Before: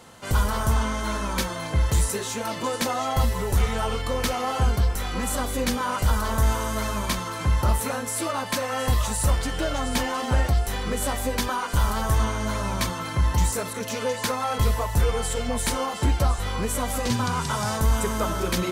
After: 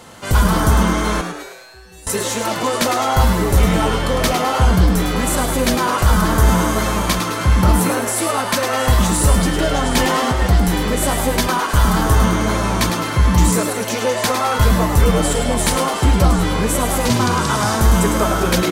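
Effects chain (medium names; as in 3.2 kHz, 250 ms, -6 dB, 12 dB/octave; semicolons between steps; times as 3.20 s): 1.21–2.07 s: feedback comb 380 Hz, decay 0.75 s, mix 100%; 9.96–10.42 s: compressor with a negative ratio -23 dBFS; frequency-shifting echo 105 ms, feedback 50%, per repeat +120 Hz, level -7 dB; trim +7.5 dB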